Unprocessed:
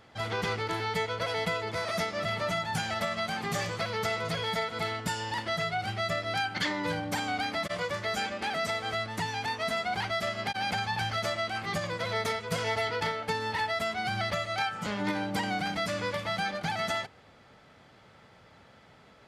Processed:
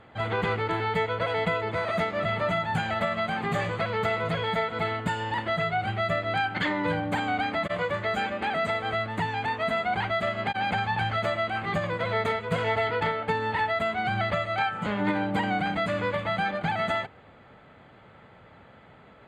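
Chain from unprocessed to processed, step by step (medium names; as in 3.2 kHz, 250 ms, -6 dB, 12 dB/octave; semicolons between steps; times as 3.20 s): boxcar filter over 8 samples; trim +5 dB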